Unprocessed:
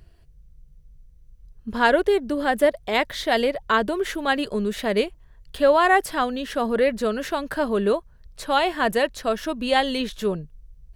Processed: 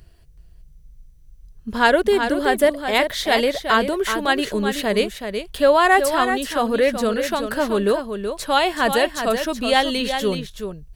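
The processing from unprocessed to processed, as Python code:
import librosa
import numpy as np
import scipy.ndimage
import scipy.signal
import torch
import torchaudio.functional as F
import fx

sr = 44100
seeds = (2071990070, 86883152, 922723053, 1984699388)

y = fx.high_shelf(x, sr, hz=3900.0, db=6.0)
y = y + 10.0 ** (-7.5 / 20.0) * np.pad(y, (int(376 * sr / 1000.0), 0))[:len(y)]
y = F.gain(torch.from_numpy(y), 2.0).numpy()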